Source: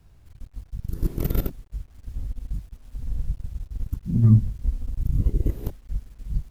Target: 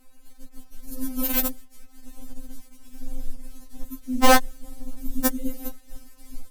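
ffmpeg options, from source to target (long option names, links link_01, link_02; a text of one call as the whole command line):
ffmpeg -i in.wav -af "equalizer=frequency=11000:width_type=o:width=1.5:gain=9.5,aeval=exprs='(mod(3.16*val(0)+1,2)-1)/3.16':channel_layout=same,afftfilt=real='re*3.46*eq(mod(b,12),0)':imag='im*3.46*eq(mod(b,12),0)':win_size=2048:overlap=0.75,volume=5dB" out.wav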